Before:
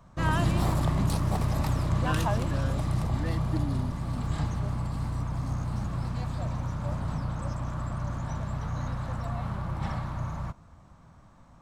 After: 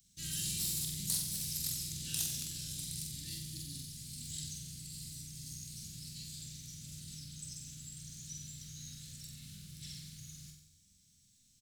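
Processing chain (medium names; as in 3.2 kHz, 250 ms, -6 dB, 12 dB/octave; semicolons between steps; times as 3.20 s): Chebyshev band-stop 190–4200 Hz, order 2; pre-emphasis filter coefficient 0.97; in parallel at -11 dB: integer overflow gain 35.5 dB; on the sum: doubling 25 ms -11.5 dB; flutter echo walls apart 7.9 m, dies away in 0.69 s; trim +5.5 dB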